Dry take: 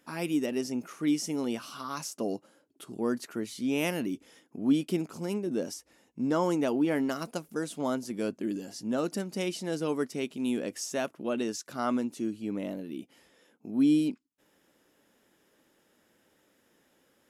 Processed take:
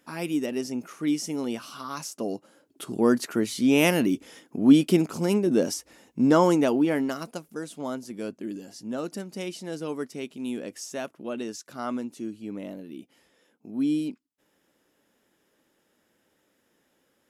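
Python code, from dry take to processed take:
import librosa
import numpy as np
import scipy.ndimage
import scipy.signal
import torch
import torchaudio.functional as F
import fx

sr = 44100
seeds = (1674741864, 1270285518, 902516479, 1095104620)

y = fx.gain(x, sr, db=fx.line((2.35, 1.5), (2.86, 9.0), (6.31, 9.0), (7.48, -2.0)))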